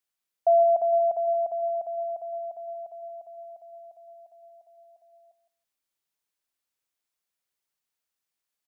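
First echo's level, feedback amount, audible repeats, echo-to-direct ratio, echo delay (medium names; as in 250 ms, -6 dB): -14.0 dB, 15%, 2, -14.0 dB, 163 ms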